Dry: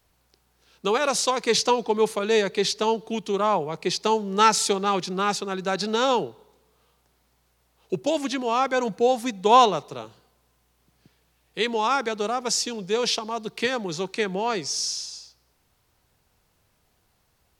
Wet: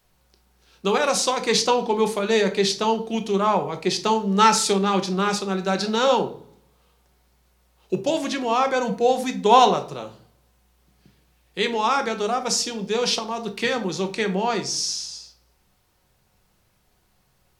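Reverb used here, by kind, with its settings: shoebox room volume 360 m³, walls furnished, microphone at 0.98 m; gain +1 dB

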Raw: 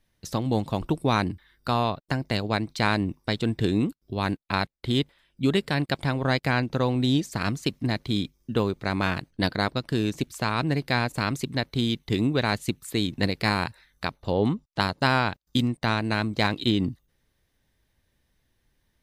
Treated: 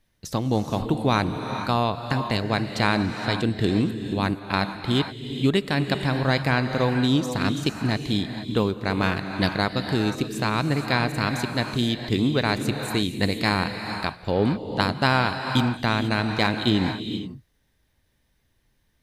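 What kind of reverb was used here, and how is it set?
non-linear reverb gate 0.5 s rising, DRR 6.5 dB; gain +1.5 dB

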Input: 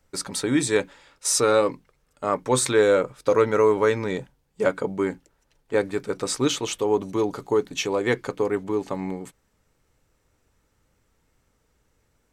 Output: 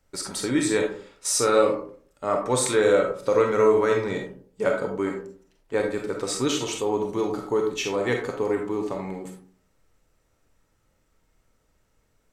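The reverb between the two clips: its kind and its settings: digital reverb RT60 0.5 s, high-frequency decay 0.4×, pre-delay 5 ms, DRR 1.5 dB; gain -3 dB

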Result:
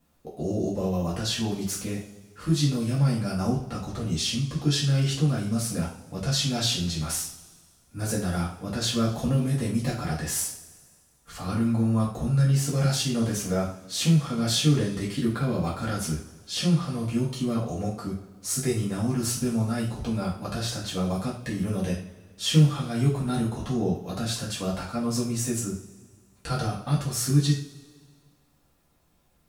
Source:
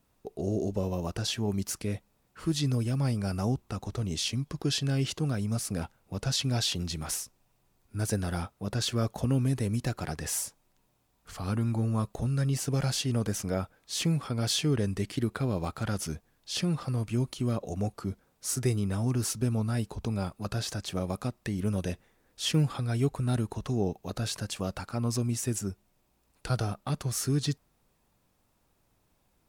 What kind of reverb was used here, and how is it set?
two-slope reverb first 0.4 s, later 1.8 s, from -19 dB, DRR -6.5 dB; gain -3.5 dB

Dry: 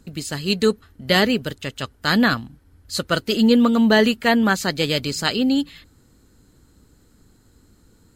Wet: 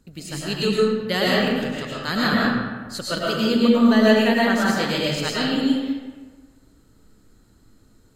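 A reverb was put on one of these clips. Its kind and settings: digital reverb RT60 1.4 s, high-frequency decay 0.6×, pre-delay 70 ms, DRR -6 dB; gain -7.5 dB

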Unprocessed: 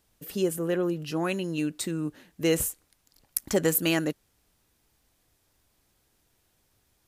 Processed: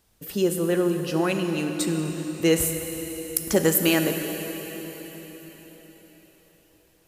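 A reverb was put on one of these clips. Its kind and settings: plate-style reverb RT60 4.7 s, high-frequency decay 1×, DRR 4.5 dB; gain +3.5 dB

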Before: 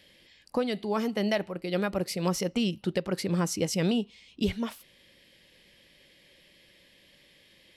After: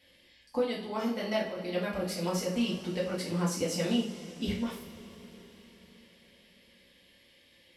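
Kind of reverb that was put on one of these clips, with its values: two-slope reverb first 0.4 s, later 4.8 s, from -20 dB, DRR -7 dB; gain -10 dB

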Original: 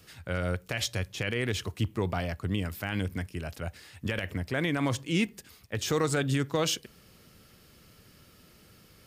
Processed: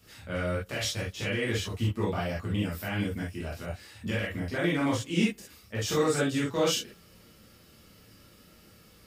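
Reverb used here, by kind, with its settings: non-linear reverb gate 90 ms flat, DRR -7 dB; gain -7 dB

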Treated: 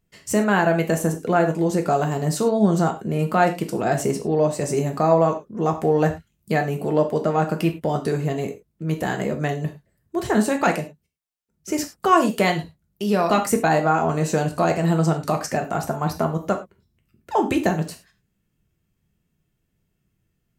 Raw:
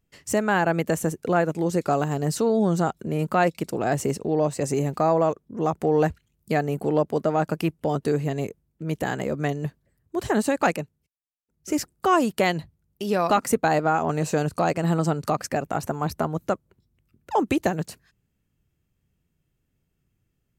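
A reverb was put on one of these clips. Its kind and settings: non-linear reverb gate 0.13 s falling, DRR 3.5 dB; gain +1 dB

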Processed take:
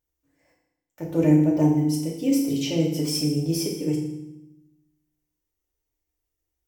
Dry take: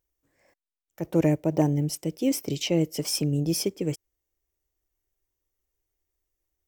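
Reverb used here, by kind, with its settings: FDN reverb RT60 0.89 s, low-frequency decay 1.45×, high-frequency decay 0.9×, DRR -2.5 dB; gain -5 dB

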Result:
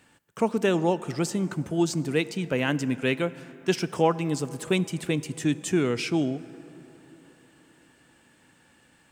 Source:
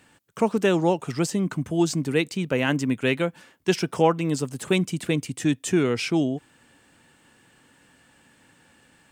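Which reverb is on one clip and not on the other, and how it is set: plate-style reverb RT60 4 s, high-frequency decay 0.45×, DRR 16 dB; gain -2.5 dB

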